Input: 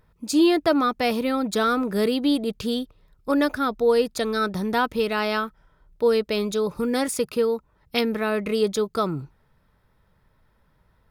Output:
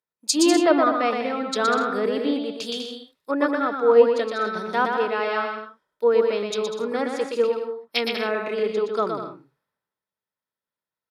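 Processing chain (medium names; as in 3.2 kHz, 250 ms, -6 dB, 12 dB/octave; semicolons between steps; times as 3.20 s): high-pass 320 Hz 12 dB/octave; low-pass that closes with the level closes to 1.9 kHz, closed at -22 dBFS; treble shelf 3.9 kHz +8.5 dB; on a send: bouncing-ball echo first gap 120 ms, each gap 0.65×, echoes 5; on the sum: three bands expanded up and down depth 70%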